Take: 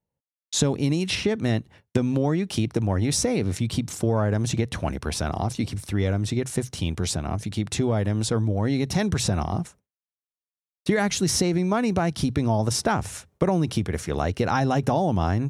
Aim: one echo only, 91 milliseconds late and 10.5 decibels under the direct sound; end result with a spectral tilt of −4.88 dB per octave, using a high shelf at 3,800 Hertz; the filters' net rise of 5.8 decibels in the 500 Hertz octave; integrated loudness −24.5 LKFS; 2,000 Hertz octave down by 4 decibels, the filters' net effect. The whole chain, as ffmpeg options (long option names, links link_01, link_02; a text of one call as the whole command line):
ffmpeg -i in.wav -af "equalizer=frequency=500:width_type=o:gain=7.5,equalizer=frequency=2000:width_type=o:gain=-8,highshelf=frequency=3800:gain=8,aecho=1:1:91:0.299,volume=-3dB" out.wav